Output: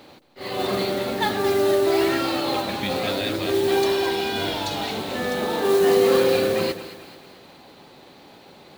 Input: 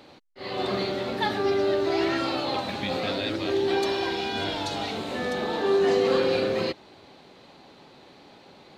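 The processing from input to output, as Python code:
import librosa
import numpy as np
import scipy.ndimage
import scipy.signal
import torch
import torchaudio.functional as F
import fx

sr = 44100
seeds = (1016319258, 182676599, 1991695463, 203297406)

y = fx.mod_noise(x, sr, seeds[0], snr_db=18)
y = fx.echo_split(y, sr, split_hz=730.0, low_ms=157, high_ms=218, feedback_pct=52, wet_db=-12.5)
y = y * 10.0 ** (3.0 / 20.0)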